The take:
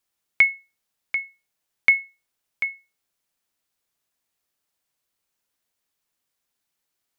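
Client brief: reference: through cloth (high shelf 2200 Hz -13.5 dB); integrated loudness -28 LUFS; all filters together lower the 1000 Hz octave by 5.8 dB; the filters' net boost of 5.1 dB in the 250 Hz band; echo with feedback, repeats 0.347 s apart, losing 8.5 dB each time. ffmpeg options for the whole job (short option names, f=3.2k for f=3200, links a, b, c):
-af "equalizer=f=250:t=o:g=7,equalizer=f=1k:t=o:g=-4.5,highshelf=f=2.2k:g=-13.5,aecho=1:1:347|694|1041|1388:0.376|0.143|0.0543|0.0206,volume=2.5dB"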